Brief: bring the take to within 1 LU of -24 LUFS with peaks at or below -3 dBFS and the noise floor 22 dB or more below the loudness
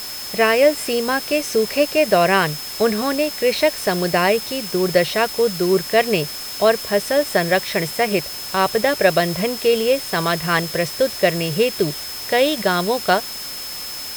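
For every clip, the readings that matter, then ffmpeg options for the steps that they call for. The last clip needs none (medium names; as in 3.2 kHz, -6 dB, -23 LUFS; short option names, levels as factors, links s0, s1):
steady tone 5.2 kHz; tone level -31 dBFS; noise floor -30 dBFS; noise floor target -41 dBFS; loudness -19.0 LUFS; peak level -2.5 dBFS; loudness target -24.0 LUFS
-> -af "bandreject=f=5200:w=30"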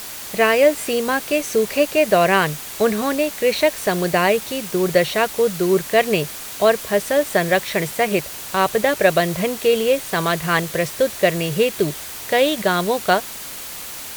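steady tone not found; noise floor -33 dBFS; noise floor target -41 dBFS
-> -af "afftdn=nr=8:nf=-33"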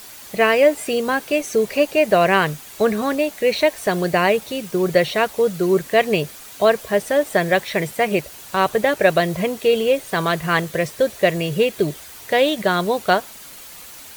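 noise floor -40 dBFS; noise floor target -41 dBFS
-> -af "afftdn=nr=6:nf=-40"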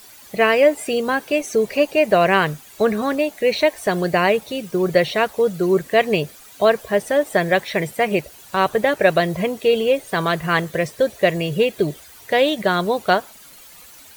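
noise floor -44 dBFS; loudness -19.0 LUFS; peak level -2.5 dBFS; loudness target -24.0 LUFS
-> -af "volume=0.562"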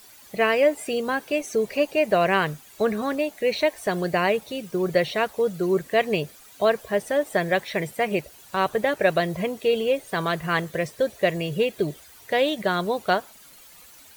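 loudness -24.0 LUFS; peak level -7.5 dBFS; noise floor -49 dBFS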